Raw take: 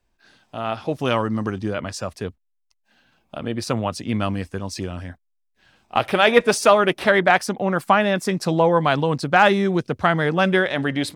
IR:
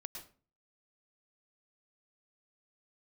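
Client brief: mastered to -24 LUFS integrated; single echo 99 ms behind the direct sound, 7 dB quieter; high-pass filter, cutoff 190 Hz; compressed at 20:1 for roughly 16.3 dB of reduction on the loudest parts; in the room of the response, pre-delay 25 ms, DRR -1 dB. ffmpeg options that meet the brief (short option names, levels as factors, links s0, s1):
-filter_complex "[0:a]highpass=190,acompressor=threshold=0.0562:ratio=20,aecho=1:1:99:0.447,asplit=2[s0][s1];[1:a]atrim=start_sample=2205,adelay=25[s2];[s1][s2]afir=irnorm=-1:irlink=0,volume=1.68[s3];[s0][s3]amix=inputs=2:normalize=0,volume=1.41"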